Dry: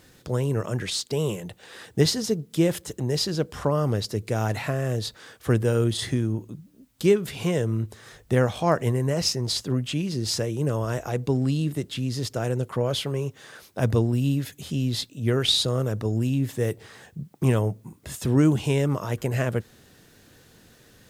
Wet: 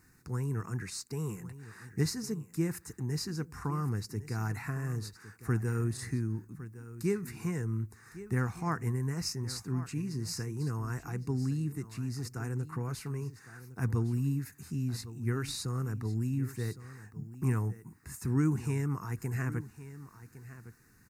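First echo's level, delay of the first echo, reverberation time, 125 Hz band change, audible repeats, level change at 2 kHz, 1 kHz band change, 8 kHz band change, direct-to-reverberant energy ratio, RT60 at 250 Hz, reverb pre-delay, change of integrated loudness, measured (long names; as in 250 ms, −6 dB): −15.0 dB, 1,109 ms, no reverb audible, −7.0 dB, 1, −8.0 dB, −9.5 dB, −9.0 dB, no reverb audible, no reverb audible, no reverb audible, −9.5 dB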